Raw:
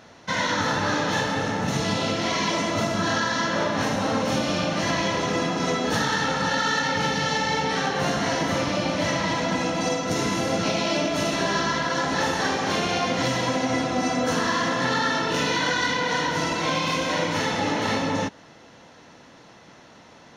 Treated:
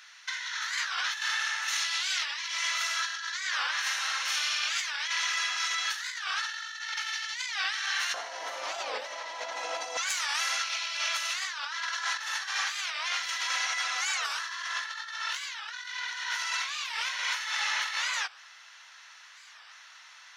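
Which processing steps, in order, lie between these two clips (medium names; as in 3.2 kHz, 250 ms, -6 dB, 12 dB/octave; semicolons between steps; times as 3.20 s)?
high-pass 1.5 kHz 24 dB/octave, from 8.14 s 610 Hz, from 9.97 s 1.3 kHz; compressor with a negative ratio -32 dBFS, ratio -0.5; warped record 45 rpm, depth 250 cents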